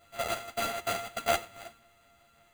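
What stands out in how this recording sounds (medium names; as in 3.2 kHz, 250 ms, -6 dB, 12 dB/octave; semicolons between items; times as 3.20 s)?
a buzz of ramps at a fixed pitch in blocks of 64 samples; random-step tremolo; aliases and images of a low sample rate 5.4 kHz, jitter 0%; a shimmering, thickened sound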